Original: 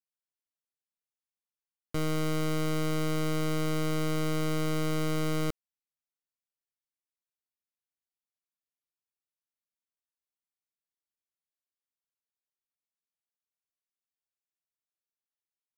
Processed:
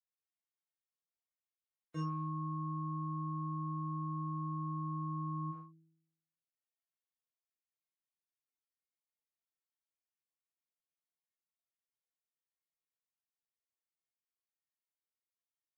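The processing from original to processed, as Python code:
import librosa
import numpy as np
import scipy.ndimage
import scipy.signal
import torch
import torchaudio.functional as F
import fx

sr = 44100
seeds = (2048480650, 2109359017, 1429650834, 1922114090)

p1 = fx.stiff_resonator(x, sr, f0_hz=160.0, decay_s=0.83, stiffness=0.008)
p2 = fx.spec_gate(p1, sr, threshold_db=-30, keep='strong')
p3 = np.clip(p2, -10.0 ** (-38.0 / 20.0), 10.0 ** (-38.0 / 20.0))
p4 = p2 + F.gain(torch.from_numpy(p3), -7.0).numpy()
p5 = scipy.signal.sosfilt(scipy.signal.butter(2, 120.0, 'highpass', fs=sr, output='sos'), p4)
p6 = fx.high_shelf(p5, sr, hz=3700.0, db=-11.0)
p7 = p6 + fx.room_early_taps(p6, sr, ms=(20, 41), db=(-5.0, -4.5), dry=0)
y = F.gain(torch.from_numpy(p7), 5.0).numpy()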